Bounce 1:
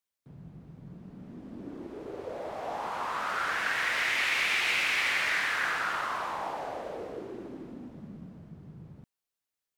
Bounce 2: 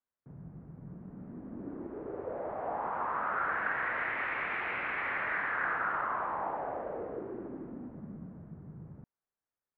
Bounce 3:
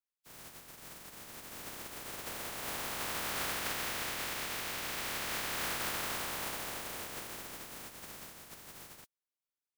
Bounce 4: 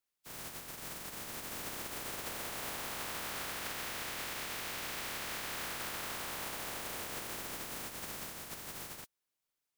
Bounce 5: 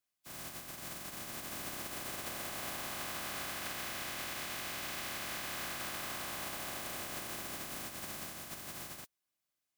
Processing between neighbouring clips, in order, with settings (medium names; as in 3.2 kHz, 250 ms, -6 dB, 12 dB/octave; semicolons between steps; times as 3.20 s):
low-pass 1.7 kHz 24 dB/octave
spectral contrast reduction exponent 0.14; trim -3.5 dB
compression, threshold -44 dBFS, peak gain reduction 11 dB; trim +6 dB
comb of notches 460 Hz; trim +1 dB